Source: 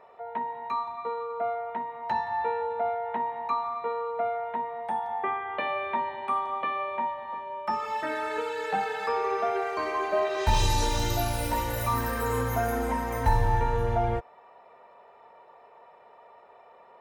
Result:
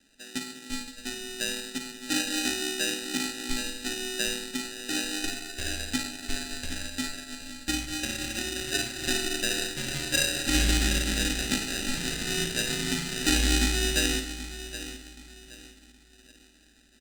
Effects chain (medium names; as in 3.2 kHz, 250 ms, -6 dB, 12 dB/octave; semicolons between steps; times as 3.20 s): frequency shift -89 Hz; high-pass 74 Hz 6 dB/octave; hum notches 50/100/150/200/250/300/350 Hz; doubling 35 ms -12 dB; feedback delay 771 ms, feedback 47%, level -8.5 dB; sample-rate reducer 1.1 kHz, jitter 0%; graphic EQ 125/250/500/1000/2000/4000/8000 Hz -4/+5/-11/-7/+8/+9/+12 dB; flutter echo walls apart 9.1 m, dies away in 0.44 s; upward expansion 1.5:1, over -45 dBFS